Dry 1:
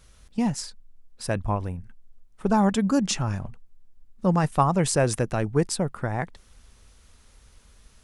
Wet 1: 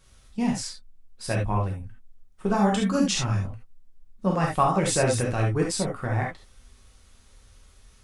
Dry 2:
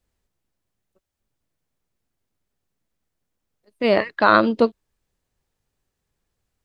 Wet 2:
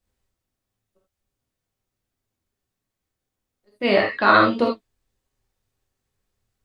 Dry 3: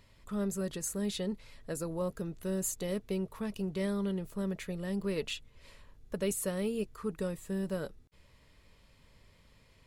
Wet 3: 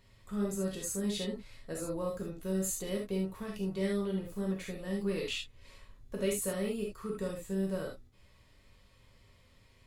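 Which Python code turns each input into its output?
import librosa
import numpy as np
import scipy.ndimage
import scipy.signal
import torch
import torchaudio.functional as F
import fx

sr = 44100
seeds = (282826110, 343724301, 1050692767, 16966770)

y = fx.rev_gated(x, sr, seeds[0], gate_ms=100, shape='flat', drr_db=-2.0)
y = fx.dynamic_eq(y, sr, hz=2500.0, q=0.94, threshold_db=-39.0, ratio=4.0, max_db=4)
y = y * 10.0 ** (-4.5 / 20.0)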